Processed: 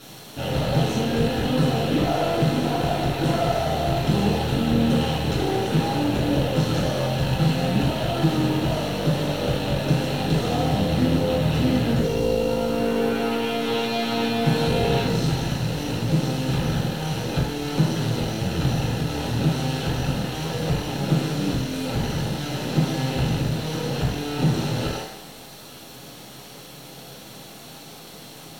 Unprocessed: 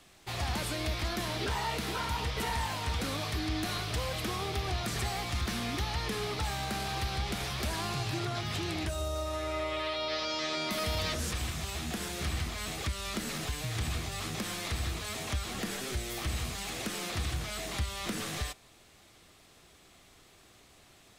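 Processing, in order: bass shelf 160 Hz +11.5 dB; comb of notches 1.5 kHz; in parallel at -9 dB: word length cut 6-bit, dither triangular; on the sum: half-wave rectifier; reverberation RT60 0.70 s, pre-delay 3 ms, DRR -6 dB; speed mistake 45 rpm record played at 33 rpm; trim -4 dB

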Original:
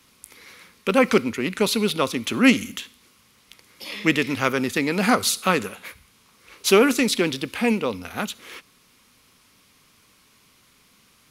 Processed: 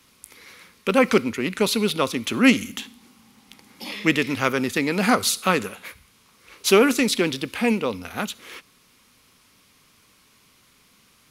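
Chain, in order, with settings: 2.77–3.92 s: small resonant body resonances 230/800 Hz, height 14 dB, ringing for 35 ms

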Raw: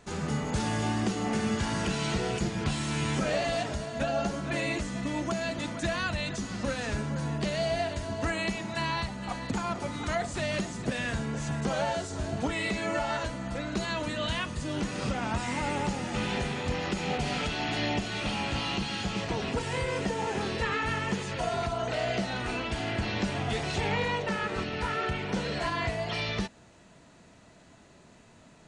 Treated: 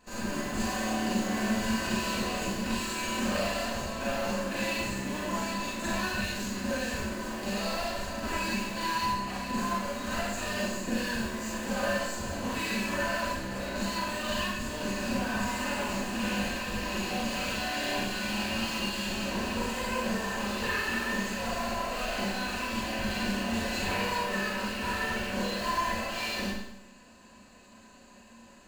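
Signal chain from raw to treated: comb filter that takes the minimum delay 3.9 ms; rippled EQ curve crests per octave 1.4, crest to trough 9 dB; in parallel at -11.5 dB: integer overflow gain 31.5 dB; on the sum: Schroeder reverb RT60 0.77 s, combs from 31 ms, DRR -6.5 dB; trim -7 dB

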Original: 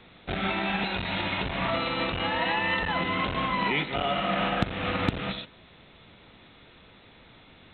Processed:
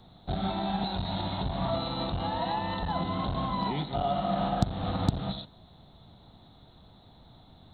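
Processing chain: FFT filter 140 Hz 0 dB, 500 Hz -11 dB, 730 Hz -1 dB, 2.5 kHz -25 dB, 4.6 kHz +5 dB; trim +3.5 dB

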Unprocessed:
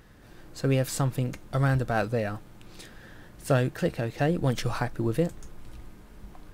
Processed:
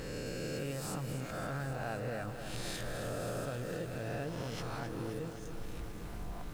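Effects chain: reverse spectral sustain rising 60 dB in 1.31 s; Doppler pass-by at 2.23 s, 12 m/s, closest 11 m; compression 12:1, threshold -52 dBFS, peak gain reduction 31 dB; bit-crushed delay 263 ms, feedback 80%, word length 12-bit, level -9 dB; trim +15 dB

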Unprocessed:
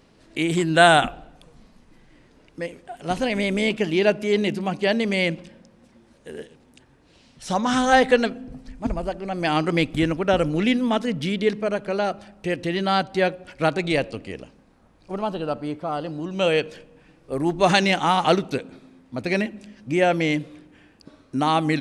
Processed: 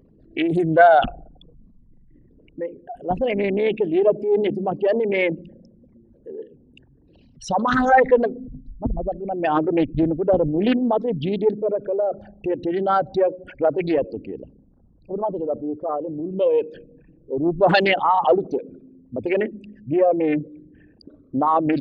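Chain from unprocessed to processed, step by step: resonances exaggerated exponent 3; loudspeaker Doppler distortion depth 0.3 ms; trim +2 dB

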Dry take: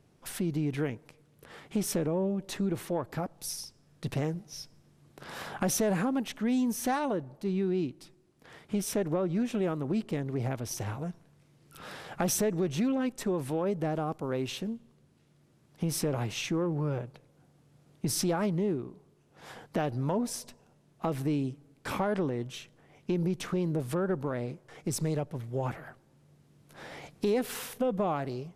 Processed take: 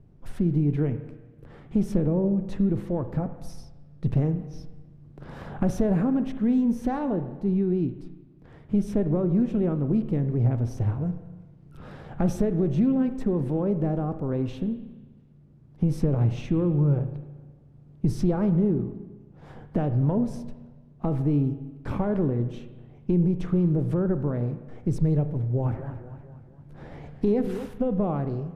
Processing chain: tilt EQ -4.5 dB/octave; spring tank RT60 1.3 s, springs 34/50 ms, chirp 55 ms, DRR 9.5 dB; 25.37–27.66 s: modulated delay 231 ms, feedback 51%, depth 170 cents, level -11 dB; trim -3 dB

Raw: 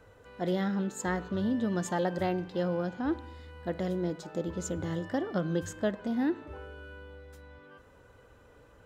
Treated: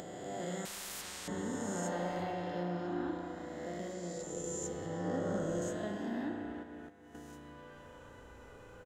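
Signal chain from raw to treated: reverse spectral sustain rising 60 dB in 2.45 s; 4.86–5.62 s: tilt EQ -2 dB/octave; speakerphone echo 340 ms, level -10 dB; spring tank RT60 3 s, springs 34 ms, chirp 60 ms, DRR 0.5 dB; 6.63–7.15 s: level held to a coarse grid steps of 18 dB; peaking EQ 6.8 kHz +6 dB 0.72 oct; feedback comb 100 Hz, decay 1.9 s, mix 70%; upward compressor, threshold -38 dBFS; 0.65–1.28 s: spectrum-flattening compressor 10:1; trim -4 dB

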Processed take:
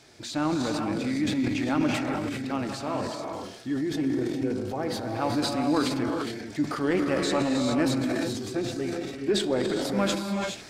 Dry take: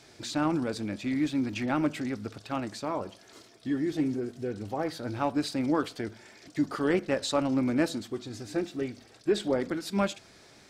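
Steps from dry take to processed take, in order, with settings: gated-style reverb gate 450 ms rising, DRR 2 dB; transient shaper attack 0 dB, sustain +8 dB

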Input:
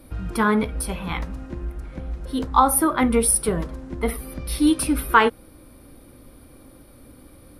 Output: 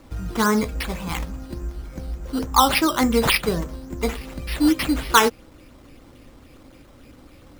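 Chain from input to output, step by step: decimation with a swept rate 8×, swing 60% 3.5 Hz

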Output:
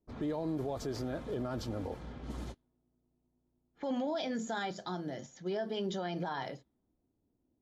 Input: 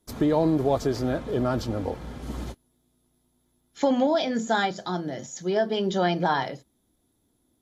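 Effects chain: peak limiter -20 dBFS, peak gain reduction 10 dB; level-controlled noise filter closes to 720 Hz, open at -28 dBFS; trim -7.5 dB

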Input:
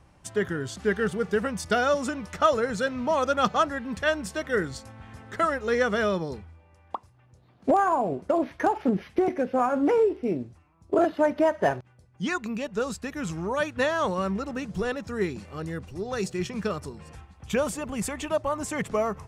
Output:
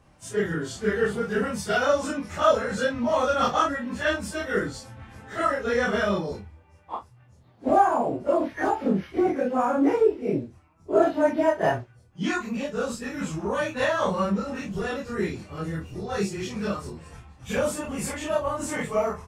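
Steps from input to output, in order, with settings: phase randomisation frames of 100 ms; doubling 25 ms -5 dB

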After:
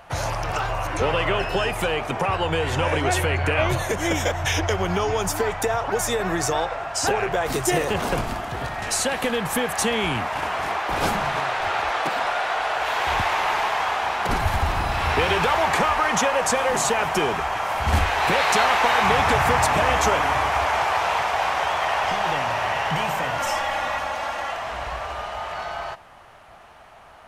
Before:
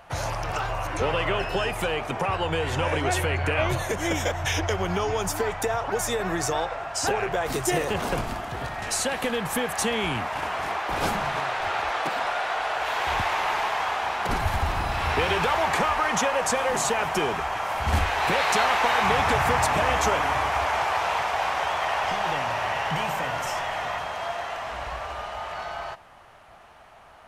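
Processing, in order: 23.39–24.52 s: comb 3.6 ms, depth 70%; trim +3 dB

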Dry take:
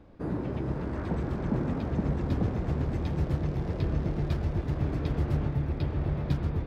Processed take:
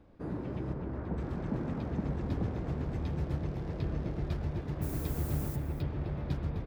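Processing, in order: 0.73–1.18 s: low-pass 1.4 kHz 6 dB/octave; 4.81–5.55 s: added noise violet -41 dBFS; echo from a far wall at 44 m, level -9 dB; trim -5.5 dB

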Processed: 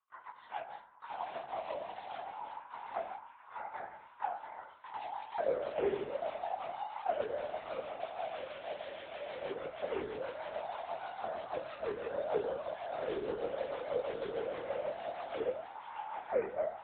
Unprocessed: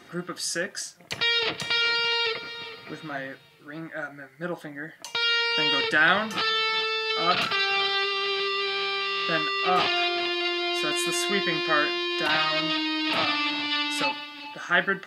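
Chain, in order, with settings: gliding tape speed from 110% -> 69%; gate -41 dBFS, range -16 dB; spectral gate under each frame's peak -15 dB weak; in parallel at 0 dB: peak limiter -27 dBFS, peak gain reduction 11.5 dB; on the sum: level rider gain up to 12 dB; rotary cabinet horn 6.3 Hz; chorus 0.85 Hz, delay 18.5 ms, depth 3 ms; LPC vocoder at 8 kHz whisper; vibrato 14 Hz 30 cents; repeats whose band climbs or falls 681 ms, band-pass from 690 Hz, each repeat 0.7 oct, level -11 dB; on a send at -11.5 dB: reverberation RT60 0.70 s, pre-delay 53 ms; on the sum: auto-wah 400–1100 Hz, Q 9.7, down, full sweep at -20 dBFS; trim +7 dB

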